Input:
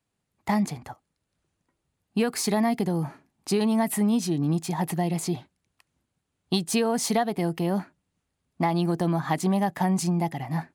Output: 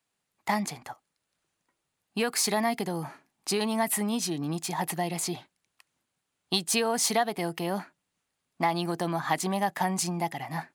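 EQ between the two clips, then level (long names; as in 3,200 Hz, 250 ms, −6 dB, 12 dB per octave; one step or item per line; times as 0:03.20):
parametric band 65 Hz −10 dB 0.84 octaves
low-shelf EQ 470 Hz −12 dB
+3.0 dB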